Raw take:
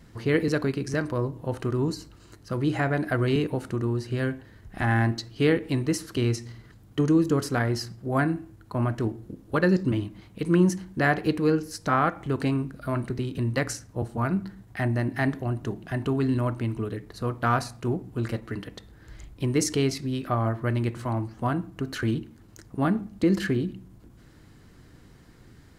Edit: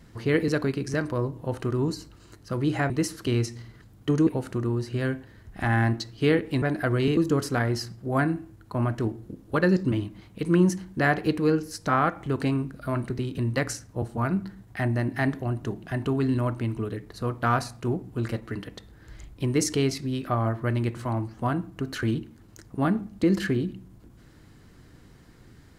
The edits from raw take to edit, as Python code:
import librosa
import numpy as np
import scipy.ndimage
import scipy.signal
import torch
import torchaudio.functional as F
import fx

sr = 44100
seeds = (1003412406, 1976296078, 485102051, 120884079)

y = fx.edit(x, sr, fx.swap(start_s=2.9, length_s=0.55, other_s=5.8, other_length_s=1.37), tone=tone)